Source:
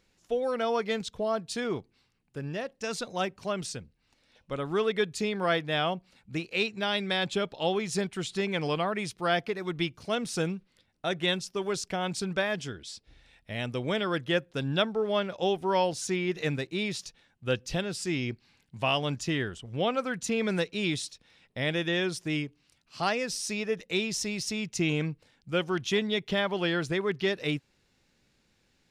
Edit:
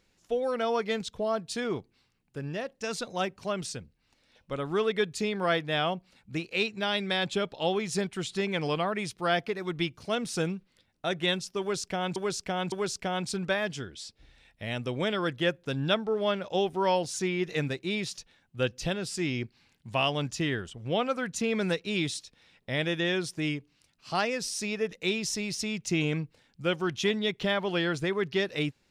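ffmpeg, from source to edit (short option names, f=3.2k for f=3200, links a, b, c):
-filter_complex "[0:a]asplit=3[a][b][c];[a]atrim=end=12.162[d];[b]atrim=start=11.598:end=12.162[e];[c]atrim=start=11.598[f];[d][e]acrossfade=d=0.004:c1=hsin:c2=hsin[g];[g][f]acrossfade=d=0.004:c1=hsin:c2=hsin"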